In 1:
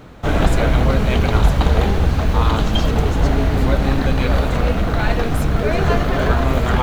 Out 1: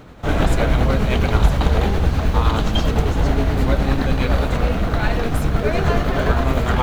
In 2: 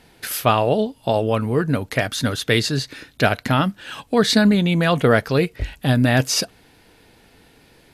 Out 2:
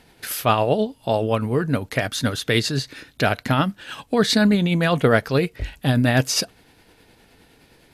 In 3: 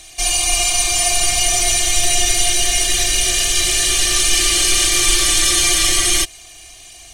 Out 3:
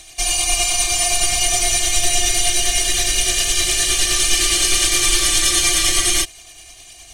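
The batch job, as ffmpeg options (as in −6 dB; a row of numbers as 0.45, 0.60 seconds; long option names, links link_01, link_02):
-af "tremolo=f=9.7:d=0.33"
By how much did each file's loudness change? −1.5, −1.5, −1.5 LU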